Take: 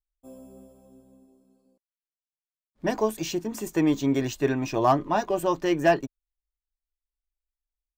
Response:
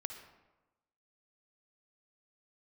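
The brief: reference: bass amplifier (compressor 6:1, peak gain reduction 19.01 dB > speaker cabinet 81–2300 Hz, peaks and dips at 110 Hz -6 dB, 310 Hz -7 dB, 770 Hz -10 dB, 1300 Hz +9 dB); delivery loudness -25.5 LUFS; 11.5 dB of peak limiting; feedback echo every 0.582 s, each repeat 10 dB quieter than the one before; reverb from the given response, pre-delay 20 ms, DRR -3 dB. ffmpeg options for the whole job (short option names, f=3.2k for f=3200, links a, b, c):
-filter_complex "[0:a]alimiter=limit=-22.5dB:level=0:latency=1,aecho=1:1:582|1164|1746|2328:0.316|0.101|0.0324|0.0104,asplit=2[a][b];[1:a]atrim=start_sample=2205,adelay=20[c];[b][c]afir=irnorm=-1:irlink=0,volume=4.5dB[d];[a][d]amix=inputs=2:normalize=0,acompressor=threshold=-41dB:ratio=6,highpass=f=81:w=0.5412,highpass=f=81:w=1.3066,equalizer=f=110:t=q:w=4:g=-6,equalizer=f=310:t=q:w=4:g=-7,equalizer=f=770:t=q:w=4:g=-10,equalizer=f=1.3k:t=q:w=4:g=9,lowpass=f=2.3k:w=0.5412,lowpass=f=2.3k:w=1.3066,volume=22dB"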